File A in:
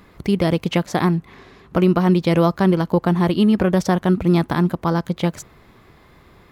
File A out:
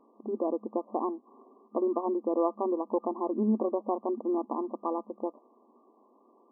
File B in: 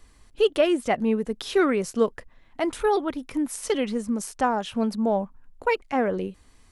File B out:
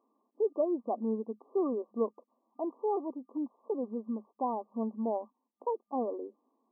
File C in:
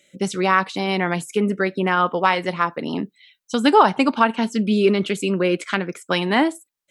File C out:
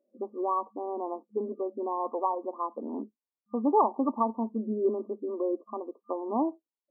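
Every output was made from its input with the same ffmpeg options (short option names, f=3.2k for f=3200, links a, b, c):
-af "afftfilt=real='re*between(b*sr/4096,210,1200)':imag='im*between(b*sr/4096,210,1200)':win_size=4096:overlap=0.75,volume=-9dB"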